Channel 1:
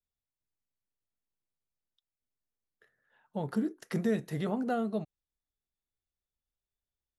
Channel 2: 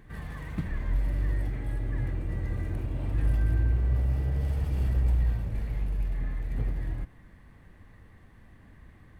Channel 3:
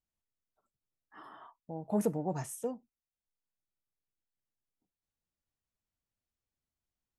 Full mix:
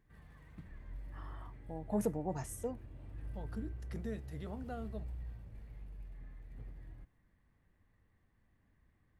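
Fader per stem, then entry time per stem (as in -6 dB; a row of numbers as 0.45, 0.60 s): -13.0, -19.5, -3.5 dB; 0.00, 0.00, 0.00 s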